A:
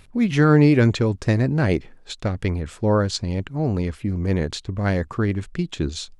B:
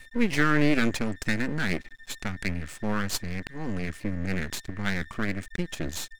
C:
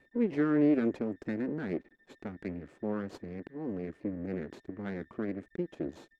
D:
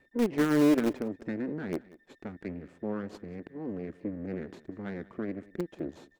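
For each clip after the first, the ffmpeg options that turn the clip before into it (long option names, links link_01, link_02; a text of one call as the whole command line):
ffmpeg -i in.wav -af "equalizer=frequency=125:width_type=o:width=1:gain=-8,equalizer=frequency=250:width_type=o:width=1:gain=4,equalizer=frequency=500:width_type=o:width=1:gain=-11,equalizer=frequency=1000:width_type=o:width=1:gain=-5,equalizer=frequency=2000:width_type=o:width=1:gain=8,equalizer=frequency=4000:width_type=o:width=1:gain=-4,equalizer=frequency=8000:width_type=o:width=1:gain=7,aeval=exprs='val(0)+0.00562*sin(2*PI*1800*n/s)':channel_layout=same,aeval=exprs='max(val(0),0)':channel_layout=same" out.wav
ffmpeg -i in.wav -af "bandpass=frequency=370:width_type=q:width=1.7:csg=0,volume=1.5dB" out.wav
ffmpeg -i in.wav -filter_complex "[0:a]asplit=2[link_01][link_02];[link_02]acrusher=bits=3:mix=0:aa=0.000001,volume=-10.5dB[link_03];[link_01][link_03]amix=inputs=2:normalize=0,aecho=1:1:188:0.0891" out.wav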